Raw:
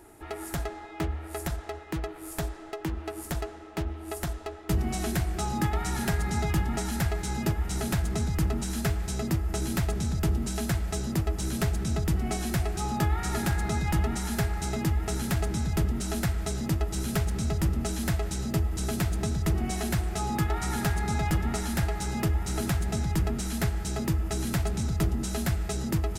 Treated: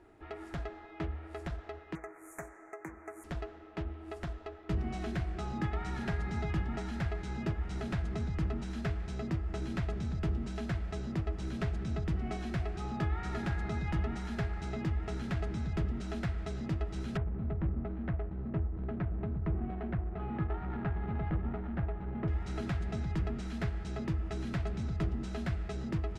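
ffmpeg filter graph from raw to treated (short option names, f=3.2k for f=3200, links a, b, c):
-filter_complex "[0:a]asettb=1/sr,asplit=3[a][b][c];[a]atrim=end=1.954[d];[b]atrim=start=1.95:end=3.24,asetpts=PTS-STARTPTS,afade=t=in:d=0.004:c=qsin,afade=t=out:st=1.286:d=0.004:c=qsin,asuperstop=centerf=3800:order=12:qfactor=0.94,aemphasis=mode=production:type=riaa[e];[c]atrim=start=3.236[f];[d][e]acrossfade=d=0.004:c1=hsin:c2=qsin[g];[g][f]acrossfade=d=0.004:c1=qsin:c2=hsin,asettb=1/sr,asplit=3[h][i][j];[h]atrim=end=17.174[k];[i]atrim=start=17.17:end=22.28,asetpts=PTS-STARTPTS,afade=t=in:d=0.004:c=qsin,afade=t=out:st=5.106:d=0.004:c=qsin,adynamicsmooth=sensitivity=2.5:basefreq=510,lowpass=2.7k[l];[j]atrim=start=22.276[m];[k][l]acrossfade=d=0.004:c1=hsin:c2=qsin[n];[n][m]acrossfade=d=0.004:c1=qsin:c2=hsin,lowpass=3.2k,bandreject=f=860:w=14,volume=-6.5dB"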